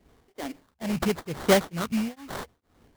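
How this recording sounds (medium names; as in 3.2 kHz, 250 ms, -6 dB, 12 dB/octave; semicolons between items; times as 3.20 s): tremolo triangle 2.2 Hz, depth 100%; phasing stages 8, 0.85 Hz, lowest notch 360–3100 Hz; aliases and images of a low sample rate 2.6 kHz, jitter 20%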